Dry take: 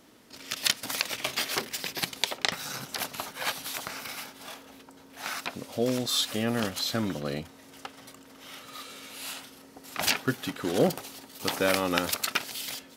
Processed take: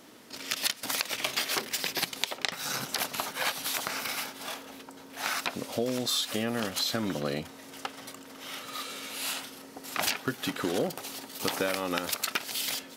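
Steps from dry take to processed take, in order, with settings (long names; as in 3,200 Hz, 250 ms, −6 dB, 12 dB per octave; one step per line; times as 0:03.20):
low-shelf EQ 100 Hz −11 dB
downward compressor 6 to 1, threshold −31 dBFS, peak gain reduction 12.5 dB
level +5 dB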